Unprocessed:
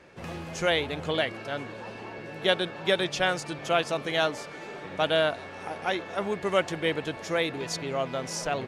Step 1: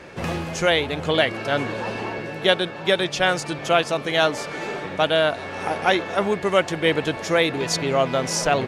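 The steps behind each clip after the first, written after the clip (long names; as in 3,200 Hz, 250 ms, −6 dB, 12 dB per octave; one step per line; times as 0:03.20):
speech leveller within 5 dB 0.5 s
level +7 dB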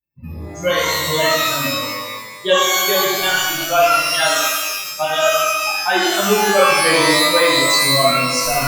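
spectral dynamics exaggerated over time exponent 3
flanger 0.51 Hz, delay 5.8 ms, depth 8.3 ms, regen −66%
reverb with rising layers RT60 1.2 s, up +12 semitones, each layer −2 dB, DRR −6.5 dB
level +6.5 dB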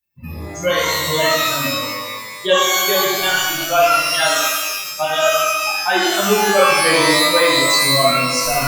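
one half of a high-frequency compander encoder only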